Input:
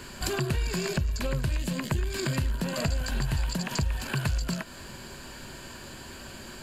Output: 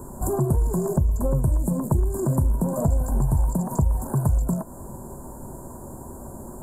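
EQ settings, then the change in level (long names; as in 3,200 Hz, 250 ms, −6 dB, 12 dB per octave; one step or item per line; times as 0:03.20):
elliptic band-stop filter 940–8,700 Hz, stop band 80 dB
+7.5 dB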